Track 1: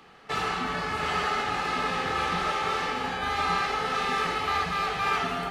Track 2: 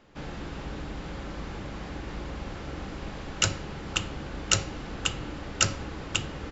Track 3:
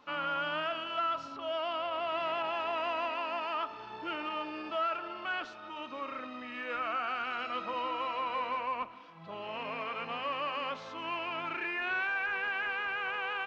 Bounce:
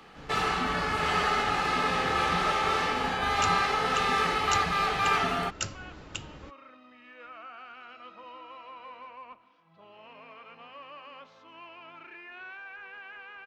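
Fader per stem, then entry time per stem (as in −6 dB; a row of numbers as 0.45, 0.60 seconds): +1.0, −9.5, −11.5 decibels; 0.00, 0.00, 0.50 seconds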